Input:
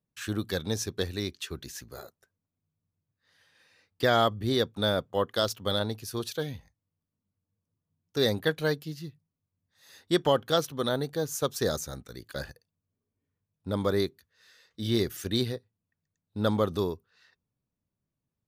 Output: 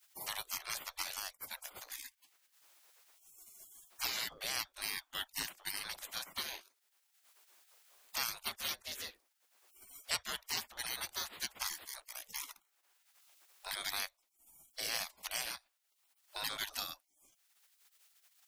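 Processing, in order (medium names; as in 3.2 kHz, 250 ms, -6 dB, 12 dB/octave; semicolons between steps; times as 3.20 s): spectral gate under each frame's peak -30 dB weak; three bands compressed up and down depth 70%; trim +9.5 dB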